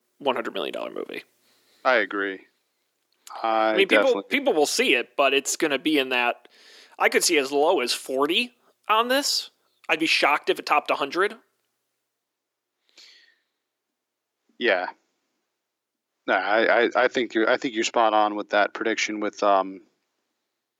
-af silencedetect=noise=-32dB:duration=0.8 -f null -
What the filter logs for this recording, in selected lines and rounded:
silence_start: 2.36
silence_end: 3.27 | silence_duration: 0.91
silence_start: 11.33
silence_end: 14.60 | silence_duration: 3.27
silence_start: 14.90
silence_end: 16.28 | silence_duration: 1.38
silence_start: 19.75
silence_end: 20.80 | silence_duration: 1.05